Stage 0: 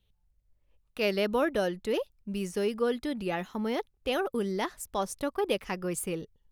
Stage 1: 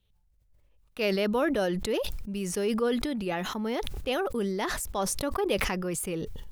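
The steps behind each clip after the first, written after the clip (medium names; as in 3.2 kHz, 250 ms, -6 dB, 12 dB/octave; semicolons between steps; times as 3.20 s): decay stretcher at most 26 dB/s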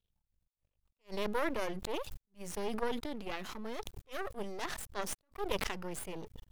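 Chebyshev shaper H 7 -22 dB, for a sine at -9.5 dBFS; half-wave rectifier; attacks held to a fixed rise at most 350 dB/s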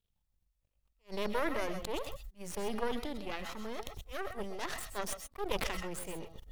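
reverberation, pre-delay 100 ms, DRR 7 dB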